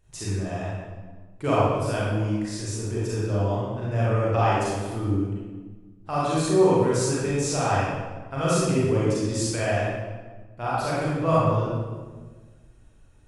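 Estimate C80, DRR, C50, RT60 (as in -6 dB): -0.5 dB, -8.5 dB, -4.0 dB, 1.4 s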